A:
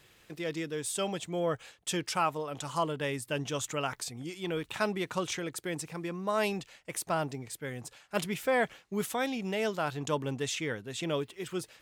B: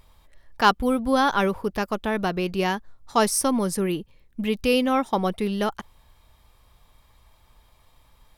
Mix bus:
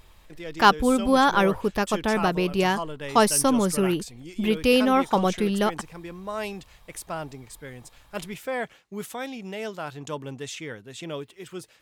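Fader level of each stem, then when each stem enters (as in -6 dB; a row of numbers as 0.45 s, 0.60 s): -2.0 dB, +1.5 dB; 0.00 s, 0.00 s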